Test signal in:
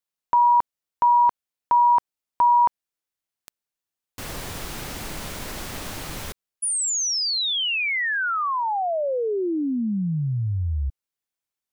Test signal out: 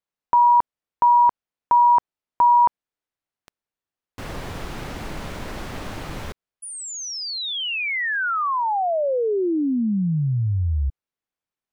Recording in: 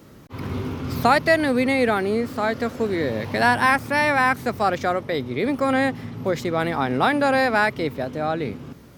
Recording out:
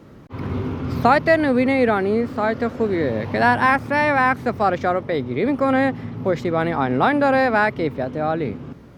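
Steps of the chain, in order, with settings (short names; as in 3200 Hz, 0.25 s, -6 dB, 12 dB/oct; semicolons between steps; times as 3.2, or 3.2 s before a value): LPF 1900 Hz 6 dB/oct; gain +3 dB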